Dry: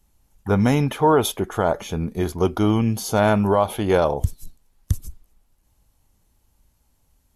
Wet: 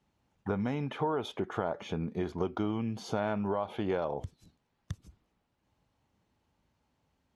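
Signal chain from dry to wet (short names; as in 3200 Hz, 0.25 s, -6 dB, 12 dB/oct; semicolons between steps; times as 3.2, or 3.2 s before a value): compressor 6:1, threshold -25 dBFS, peak gain reduction 12.5 dB; BPF 120–3400 Hz; gain -3.5 dB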